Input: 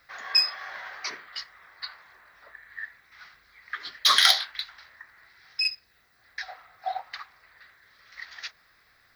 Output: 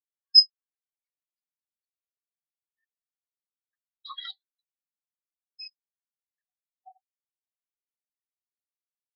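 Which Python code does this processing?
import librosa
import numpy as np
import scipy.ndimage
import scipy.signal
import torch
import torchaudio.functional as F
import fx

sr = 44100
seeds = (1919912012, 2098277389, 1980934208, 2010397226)

y = fx.spectral_expand(x, sr, expansion=4.0)
y = y * 10.0 ** (-3.5 / 20.0)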